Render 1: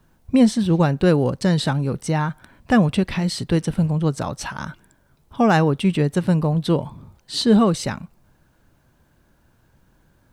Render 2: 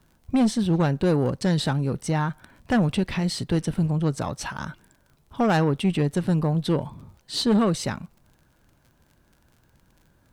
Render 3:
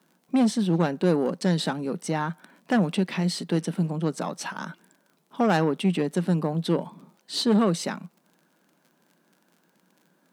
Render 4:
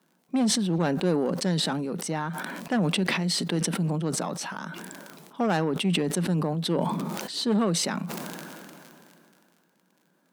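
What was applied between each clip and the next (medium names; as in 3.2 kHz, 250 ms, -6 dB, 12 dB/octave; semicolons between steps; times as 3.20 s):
valve stage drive 13 dB, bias 0.3; crackle 41 per s -43 dBFS; trim -1.5 dB
elliptic high-pass 170 Hz, stop band 40 dB
decay stretcher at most 22 dB/s; trim -3.5 dB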